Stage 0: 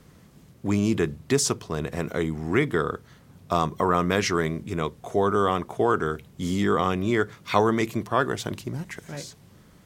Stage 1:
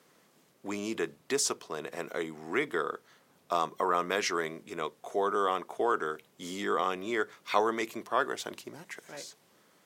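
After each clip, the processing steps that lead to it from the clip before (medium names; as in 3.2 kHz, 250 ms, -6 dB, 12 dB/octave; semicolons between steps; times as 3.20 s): high-pass 400 Hz 12 dB/octave; trim -4.5 dB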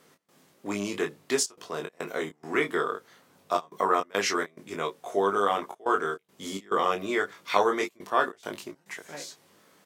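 trance gate "x.xxxxxxxx.xx.x" 105 bpm -24 dB; wow and flutter 29 cents; on a send: early reflections 20 ms -4.5 dB, 31 ms -9 dB; on the sum: trim +2.5 dB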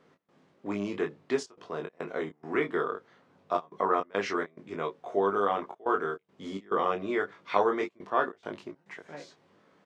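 tape spacing loss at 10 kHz 26 dB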